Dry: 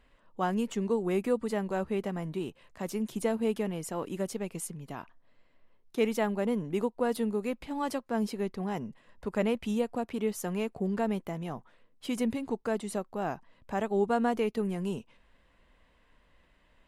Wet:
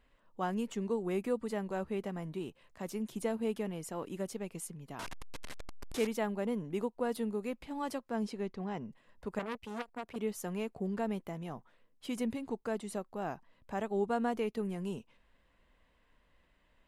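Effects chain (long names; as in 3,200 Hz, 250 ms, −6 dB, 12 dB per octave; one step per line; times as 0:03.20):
0:04.99–0:06.07: linear delta modulator 64 kbit/s, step −30 dBFS
0:08.15–0:08.87: low-pass filter 10,000 Hz → 4,500 Hz 12 dB per octave
0:09.39–0:10.16: saturating transformer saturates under 1,900 Hz
level −5 dB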